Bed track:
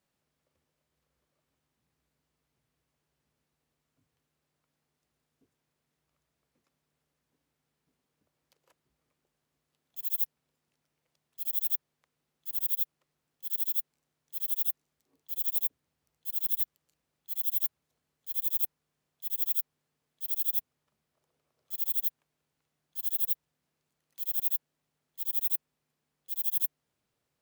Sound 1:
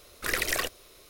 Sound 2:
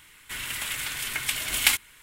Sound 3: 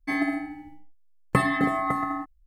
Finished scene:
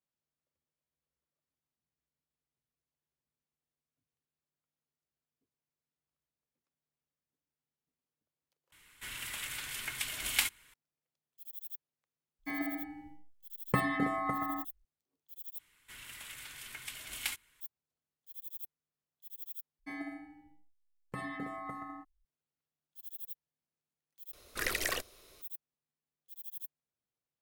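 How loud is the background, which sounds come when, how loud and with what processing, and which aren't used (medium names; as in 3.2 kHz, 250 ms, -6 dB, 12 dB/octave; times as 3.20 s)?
bed track -15.5 dB
8.72 s: replace with 2 -9 dB
12.39 s: add 3 -11.5 dB + level rider gain up to 6 dB
15.59 s: replace with 2 -16 dB
19.79 s: replace with 3 -16 dB + peak limiter -12.5 dBFS
24.33 s: replace with 1 -5.5 dB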